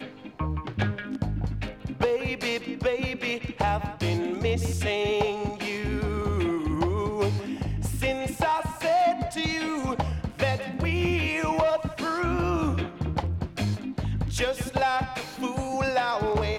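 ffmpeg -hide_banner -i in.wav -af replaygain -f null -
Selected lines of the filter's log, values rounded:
track_gain = +8.3 dB
track_peak = 0.216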